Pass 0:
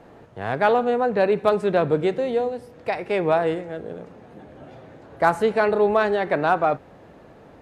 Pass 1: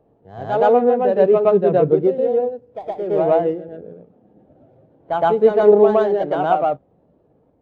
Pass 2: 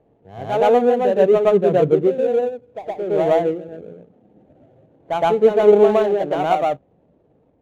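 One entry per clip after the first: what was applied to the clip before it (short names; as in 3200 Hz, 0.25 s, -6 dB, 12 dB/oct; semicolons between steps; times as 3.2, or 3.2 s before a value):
median filter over 25 samples; reverse echo 0.116 s -3 dB; spectral expander 1.5:1; gain +5.5 dB
median filter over 25 samples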